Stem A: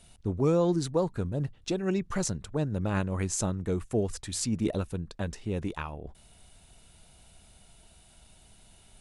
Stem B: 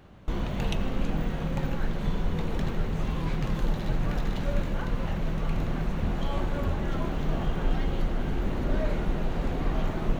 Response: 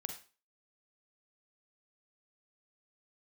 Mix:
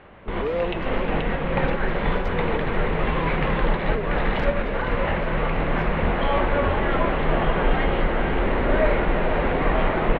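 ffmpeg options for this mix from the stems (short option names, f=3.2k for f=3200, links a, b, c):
-filter_complex "[0:a]adynamicsmooth=sensitivity=5:basefreq=580,asplit=2[a][b];[b]adelay=3.6,afreqshift=1.4[c];[a][c]amix=inputs=2:normalize=1,volume=-12.5dB,asplit=3[d][e][f];[d]atrim=end=2.73,asetpts=PTS-STARTPTS,afade=t=out:st=2.726:d=0.004:c=hsin[g];[e]atrim=start=2.73:end=3.75,asetpts=PTS-STARTPTS,volume=0[h];[f]atrim=start=3.75,asetpts=PTS-STARTPTS,afade=t=in:d=0.004:c=hsin[i];[g][h][i]concat=n=3:v=0:a=1,asplit=4[j][k][l][m];[k]volume=-7.5dB[n];[l]volume=-12dB[o];[1:a]lowpass=f=3.1k:w=0.5412,lowpass=f=3.1k:w=1.3066,volume=0.5dB,asplit=2[p][q];[q]volume=-10.5dB[r];[m]apad=whole_len=449383[s];[p][s]sidechaincompress=threshold=-44dB:ratio=8:attack=22:release=226[t];[2:a]atrim=start_sample=2205[u];[n][u]afir=irnorm=-1:irlink=0[v];[o][r]amix=inputs=2:normalize=0,aecho=0:1:481:1[w];[j][t][v][w]amix=inputs=4:normalize=0,equalizer=f=125:t=o:w=1:g=-3,equalizer=f=500:t=o:w=1:g=8,equalizer=f=1k:t=o:w=1:g=6,equalizer=f=2k:t=o:w=1:g=10,equalizer=f=4k:t=o:w=1:g=8,equalizer=f=8k:t=o:w=1:g=-12,dynaudnorm=f=200:g=3:m=3.5dB"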